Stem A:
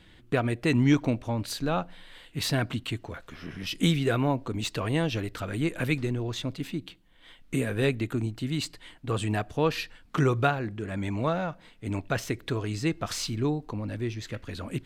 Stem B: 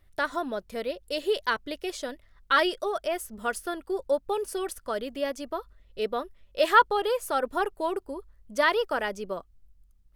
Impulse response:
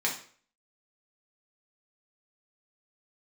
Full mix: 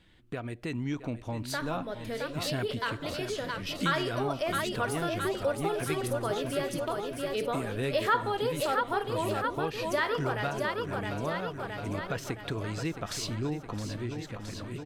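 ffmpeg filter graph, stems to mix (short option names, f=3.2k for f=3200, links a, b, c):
-filter_complex "[0:a]dynaudnorm=f=200:g=11:m=10dB,volume=-7dB,asplit=2[a][b];[b]volume=-11dB[c];[1:a]dynaudnorm=f=970:g=5:m=11.5dB,adelay=1350,volume=-2dB,asplit=3[d][e][f];[e]volume=-12.5dB[g];[f]volume=-3.5dB[h];[2:a]atrim=start_sample=2205[i];[g][i]afir=irnorm=-1:irlink=0[j];[c][h]amix=inputs=2:normalize=0,aecho=0:1:667|1334|2001|2668|3335|4002|4669|5336:1|0.55|0.303|0.166|0.0915|0.0503|0.0277|0.0152[k];[a][d][j][k]amix=inputs=4:normalize=0,acompressor=threshold=-36dB:ratio=2"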